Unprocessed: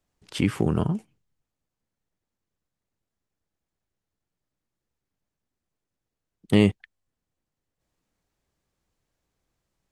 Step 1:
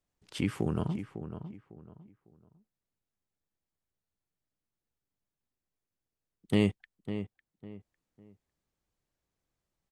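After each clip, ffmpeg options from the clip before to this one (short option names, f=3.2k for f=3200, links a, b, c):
-filter_complex "[0:a]asplit=2[a][b];[b]adelay=552,lowpass=f=2k:p=1,volume=-10dB,asplit=2[c][d];[d]adelay=552,lowpass=f=2k:p=1,volume=0.29,asplit=2[e][f];[f]adelay=552,lowpass=f=2k:p=1,volume=0.29[g];[a][c][e][g]amix=inputs=4:normalize=0,volume=-7.5dB"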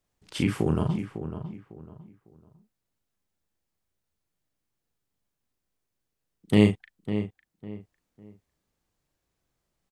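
-filter_complex "[0:a]asplit=2[a][b];[b]adelay=38,volume=-6dB[c];[a][c]amix=inputs=2:normalize=0,volume=5dB"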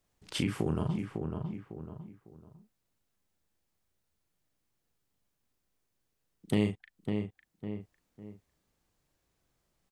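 -af "acompressor=threshold=-35dB:ratio=2,volume=2dB"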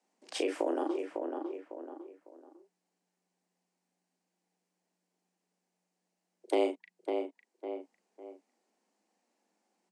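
-af "afreqshift=180,highpass=300,equalizer=f=790:t=q:w=4:g=7,equalizer=f=1.3k:t=q:w=4:g=-5,equalizer=f=3.5k:t=q:w=4:g=-6,lowpass=f=9.2k:w=0.5412,lowpass=f=9.2k:w=1.3066"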